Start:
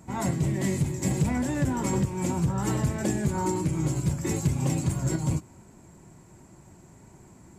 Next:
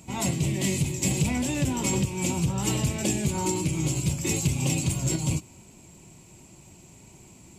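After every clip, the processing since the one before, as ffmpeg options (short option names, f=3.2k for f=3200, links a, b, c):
-af "highshelf=f=2.1k:t=q:w=3:g=7,acontrast=22,volume=-5dB"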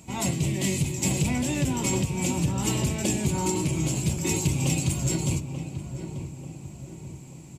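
-filter_complex "[0:a]asplit=2[a][b];[b]adelay=888,lowpass=f=1.4k:p=1,volume=-8.5dB,asplit=2[c][d];[d]adelay=888,lowpass=f=1.4k:p=1,volume=0.52,asplit=2[e][f];[f]adelay=888,lowpass=f=1.4k:p=1,volume=0.52,asplit=2[g][h];[h]adelay=888,lowpass=f=1.4k:p=1,volume=0.52,asplit=2[i][j];[j]adelay=888,lowpass=f=1.4k:p=1,volume=0.52,asplit=2[k][l];[l]adelay=888,lowpass=f=1.4k:p=1,volume=0.52[m];[a][c][e][g][i][k][m]amix=inputs=7:normalize=0"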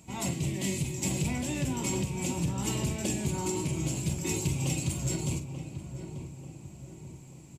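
-filter_complex "[0:a]asplit=2[a][b];[b]adelay=46,volume=-11dB[c];[a][c]amix=inputs=2:normalize=0,volume=-5.5dB"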